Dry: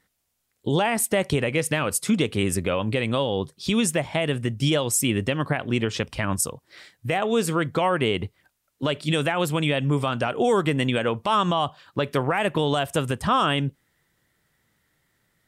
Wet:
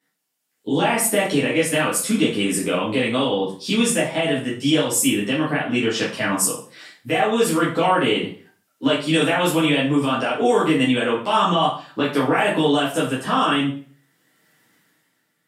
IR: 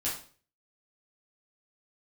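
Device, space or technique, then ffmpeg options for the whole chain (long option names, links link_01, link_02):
far laptop microphone: -filter_complex "[1:a]atrim=start_sample=2205[link_01];[0:a][link_01]afir=irnorm=-1:irlink=0,highpass=frequency=170:width=0.5412,highpass=frequency=170:width=1.3066,dynaudnorm=framelen=120:gausssize=11:maxgain=11.5dB,volume=-5.5dB"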